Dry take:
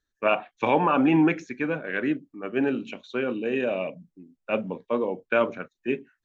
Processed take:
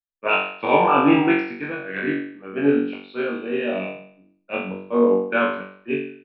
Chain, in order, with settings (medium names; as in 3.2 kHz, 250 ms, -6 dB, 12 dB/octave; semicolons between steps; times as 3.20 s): resampled via 11.025 kHz; flutter echo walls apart 3.6 m, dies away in 0.78 s; three bands expanded up and down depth 70%